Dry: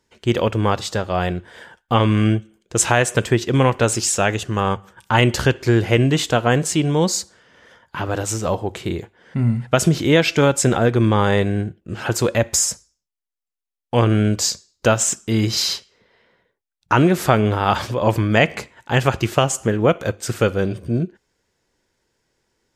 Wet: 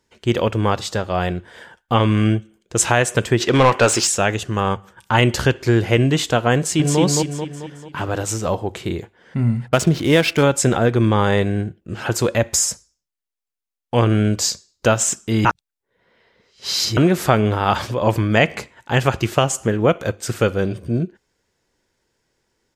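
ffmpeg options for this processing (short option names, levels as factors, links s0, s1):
-filter_complex "[0:a]asettb=1/sr,asplit=3[s0][s1][s2];[s0]atrim=end=3.404[s3];[s1]atrim=start=3.4:end=4.07,asetpts=PTS-STARTPTS,afade=t=in:d=0.004:c=qsin,afade=t=out:st=0.666:d=0.004:c=qsin,asplit=2[s4][s5];[s5]highpass=f=720:p=1,volume=7.08,asoftclip=type=tanh:threshold=0.668[s6];[s4][s6]amix=inputs=2:normalize=0,lowpass=f=3900:p=1,volume=0.501[s7];[s2]atrim=start=4.066[s8];[s3][s7]acrossfade=d=0.004:c1=hsin:c2=qsin[s9];[s9][s8]acrossfade=d=0.004:c1=qsin:c2=hsin,asplit=2[s10][s11];[s11]afade=t=in:st=6.57:d=0.01,afade=t=out:st=7:d=0.01,aecho=0:1:220|440|660|880|1100|1320|1540:0.794328|0.397164|0.198582|0.099291|0.0496455|0.0248228|0.0124114[s12];[s10][s12]amix=inputs=2:normalize=0,asettb=1/sr,asplit=3[s13][s14][s15];[s13]atrim=end=9.684[s16];[s14]atrim=start=9.68:end=10.43,asetpts=PTS-STARTPTS,afade=t=in:d=0.004:c=qsin,afade=t=out:st=0.746:d=0.004:c=qsin,adynamicsmooth=sensitivity=7:basefreq=1100[s17];[s15]atrim=start=10.426[s18];[s16][s17]acrossfade=d=0.004:c1=hsin:c2=qsin[s19];[s19][s18]acrossfade=d=0.004:c1=qsin:c2=hsin,asplit=3[s20][s21][s22];[s20]atrim=end=15.452[s23];[s21]atrim=start=15.448:end=16.972,asetpts=PTS-STARTPTS,areverse[s24];[s22]atrim=start=16.968[s25];[s23][s24]acrossfade=d=0.004:c1=hsin:c2=hsin[s26];[s26][s25]acrossfade=d=0.004:c1=hsin:c2=hsin"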